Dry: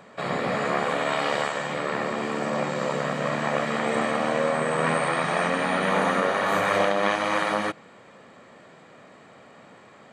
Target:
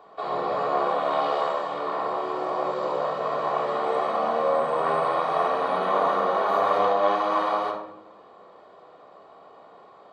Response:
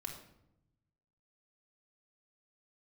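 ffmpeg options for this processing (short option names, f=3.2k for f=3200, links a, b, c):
-filter_complex "[0:a]equalizer=f=125:t=o:w=1:g=-10,equalizer=f=250:t=o:w=1:g=-3,equalizer=f=500:t=o:w=1:g=9,equalizer=f=1k:t=o:w=1:g=12,equalizer=f=2k:t=o:w=1:g=-8,equalizer=f=4k:t=o:w=1:g=7,equalizer=f=8k:t=o:w=1:g=-11[a];[1:a]atrim=start_sample=2205[b];[a][b]afir=irnorm=-1:irlink=0,volume=-5.5dB"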